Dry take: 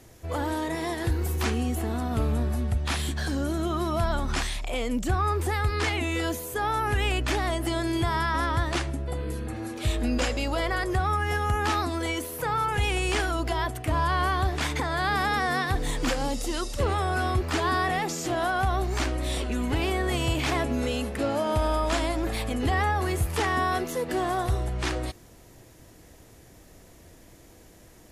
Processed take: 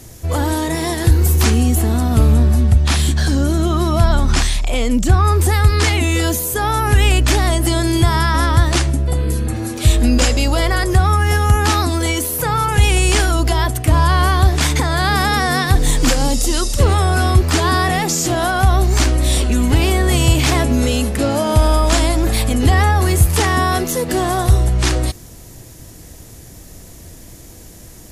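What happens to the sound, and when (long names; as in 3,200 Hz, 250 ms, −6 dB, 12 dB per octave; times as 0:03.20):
0:02.34–0:05.25: high-shelf EQ 9,600 Hz −9 dB
whole clip: bass and treble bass +7 dB, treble +9 dB; level +8 dB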